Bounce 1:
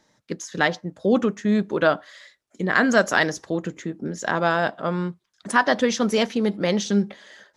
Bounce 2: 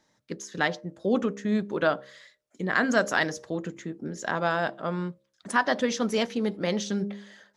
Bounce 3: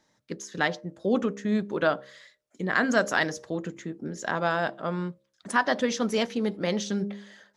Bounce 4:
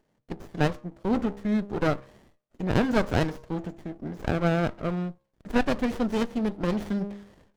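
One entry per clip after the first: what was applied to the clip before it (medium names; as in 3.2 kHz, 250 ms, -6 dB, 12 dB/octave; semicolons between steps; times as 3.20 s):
de-hum 67.39 Hz, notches 9; trim -5 dB
no audible change
sliding maximum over 33 samples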